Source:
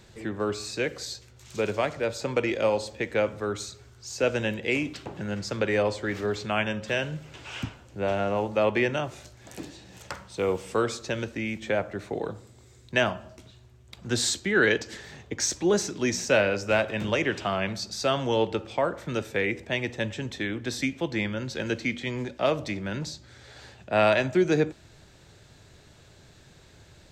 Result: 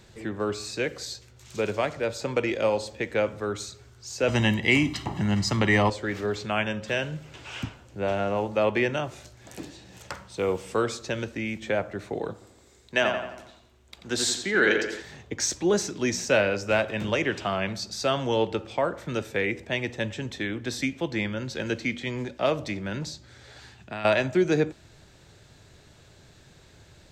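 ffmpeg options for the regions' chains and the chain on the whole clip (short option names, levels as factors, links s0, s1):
-filter_complex "[0:a]asettb=1/sr,asplit=3[s0][s1][s2];[s0]atrim=end=4.284[s3];[s1]atrim=start=4.28:end=5.9,asetpts=PTS-STARTPTS,afade=t=in:d=0.004:c=qsin,afade=t=out:st=1.616:d=0.004:c=qsin,aecho=1:1:1:0.7,atrim=end_sample=71442,acontrast=35[s4];[s2]atrim=start=5.896[s5];[s3][s4]acrossfade=d=0.004:c1=hsin:c2=qsin[s6];[s6][s5]acrossfade=d=0.004:c1=qsin:c2=hsin,asettb=1/sr,asplit=3[s7][s8][s9];[s7]atrim=end=12.334[s10];[s8]atrim=start=12.33:end=15.02,asetpts=PTS-STARTPTS,afade=t=in:d=0.004:c=qsin,afade=t=out:st=2.686:d=0.004:c=qsin,equalizer=f=110:t=o:w=1.5:g=-10.5,asplit=2[s11][s12];[s12]adelay=87,lowpass=f=4100:p=1,volume=0.531,asplit=2[s13][s14];[s14]adelay=87,lowpass=f=4100:p=1,volume=0.51,asplit=2[s15][s16];[s16]adelay=87,lowpass=f=4100:p=1,volume=0.51,asplit=2[s17][s18];[s18]adelay=87,lowpass=f=4100:p=1,volume=0.51,asplit=2[s19][s20];[s20]adelay=87,lowpass=f=4100:p=1,volume=0.51,asplit=2[s21][s22];[s22]adelay=87,lowpass=f=4100:p=1,volume=0.51[s23];[s11][s13][s15][s17][s19][s21][s23]amix=inputs=7:normalize=0,atrim=end_sample=118629[s24];[s9]atrim=start=15.016[s25];[s10][s24]acrossfade=d=0.004:c1=hsin:c2=qsin[s26];[s26][s25]acrossfade=d=0.004:c1=qsin:c2=hsin,asettb=1/sr,asplit=3[s27][s28][s29];[s27]atrim=end=23.594[s30];[s28]atrim=start=23.59:end=24.05,asetpts=PTS-STARTPTS,afade=t=in:d=0.004:c=qsin,afade=t=out:st=0.456:d=0.004:c=qsin,equalizer=f=550:t=o:w=0.59:g=-11,acompressor=threshold=0.0316:ratio=6:attack=3.2:release=140:knee=1:detection=peak[s31];[s29]atrim=start=24.046[s32];[s30][s31]acrossfade=d=0.004:c1=hsin:c2=qsin[s33];[s33][s32]acrossfade=d=0.004:c1=qsin:c2=hsin"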